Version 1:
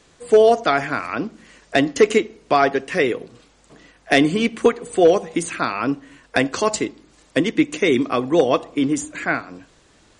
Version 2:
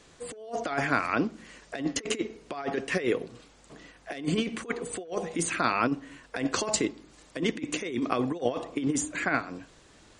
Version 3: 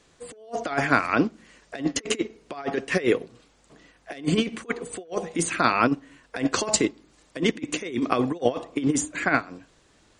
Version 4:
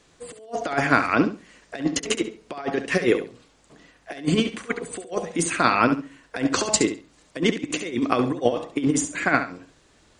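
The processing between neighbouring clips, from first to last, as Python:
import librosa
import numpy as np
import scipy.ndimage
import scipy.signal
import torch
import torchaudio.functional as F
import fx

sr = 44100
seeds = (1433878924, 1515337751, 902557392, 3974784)

y1 = fx.over_compress(x, sr, threshold_db=-21.0, ratio=-0.5)
y1 = y1 * librosa.db_to_amplitude(-6.5)
y2 = fx.upward_expand(y1, sr, threshold_db=-43.0, expansion=1.5)
y2 = y2 * librosa.db_to_amplitude(6.5)
y3 = fx.echo_feedback(y2, sr, ms=69, feedback_pct=20, wet_db=-10.0)
y3 = y3 * librosa.db_to_amplitude(1.5)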